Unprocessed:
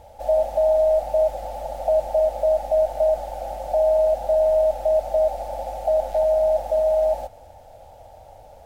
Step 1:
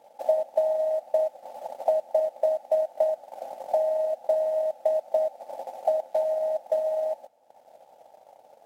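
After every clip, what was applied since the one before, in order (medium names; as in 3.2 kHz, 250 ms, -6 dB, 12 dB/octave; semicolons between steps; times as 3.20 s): high-pass 200 Hz 24 dB/octave; transient shaper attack +8 dB, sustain -10 dB; trim -8 dB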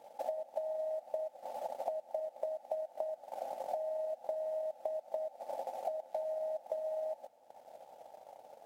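compression 10:1, threshold -34 dBFS, peak gain reduction 16.5 dB; trim -1 dB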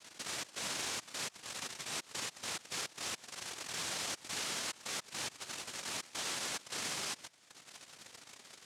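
peak limiter -34 dBFS, peak gain reduction 10.5 dB; noise-vocoded speech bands 1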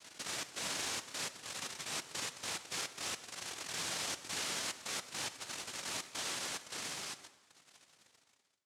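fade out at the end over 2.63 s; plate-style reverb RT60 1.2 s, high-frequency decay 0.75×, DRR 11.5 dB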